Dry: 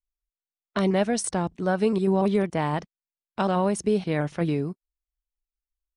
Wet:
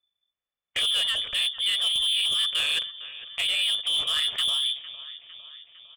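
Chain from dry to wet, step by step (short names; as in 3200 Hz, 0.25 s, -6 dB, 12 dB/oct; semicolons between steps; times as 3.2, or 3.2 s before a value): octaver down 2 oct, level -2 dB; limiter -17.5 dBFS, peak gain reduction 6 dB; bell 2000 Hz +3 dB 1.6 oct; notches 60/120/180/240/300/360/420/480/540/600 Hz; feedback echo 0.455 s, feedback 58%, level -20.5 dB; inverted band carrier 3500 Hz; soft clip -25.5 dBFS, distortion -11 dB; comb 1.7 ms, depth 31%; gain +4.5 dB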